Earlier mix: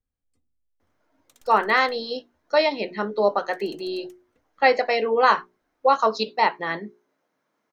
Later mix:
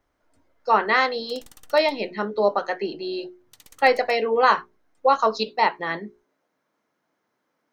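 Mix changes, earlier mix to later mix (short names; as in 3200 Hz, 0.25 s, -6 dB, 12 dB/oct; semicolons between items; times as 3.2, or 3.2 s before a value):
speech: entry -0.80 s; background +8.0 dB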